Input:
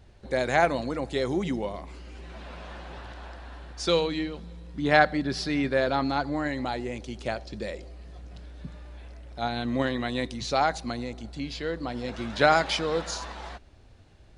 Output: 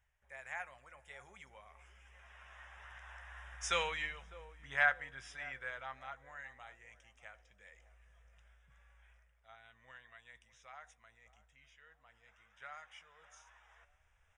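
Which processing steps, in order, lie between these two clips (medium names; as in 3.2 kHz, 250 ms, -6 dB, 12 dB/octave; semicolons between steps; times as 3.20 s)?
Doppler pass-by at 3.80 s, 16 m/s, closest 6.7 m; FFT filter 200 Hz 0 dB, 1.9 kHz +11 dB, 4.5 kHz -5 dB, 6.5 kHz +2 dB; reverse; upward compressor, threshold -46 dBFS; reverse; Butterworth band-stop 4.3 kHz, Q 2.8; amplifier tone stack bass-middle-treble 10-0-10; doubling 15 ms -13.5 dB; on a send: band-passed feedback delay 603 ms, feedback 47%, band-pass 390 Hz, level -15 dB; on the sum: trim -2.5 dB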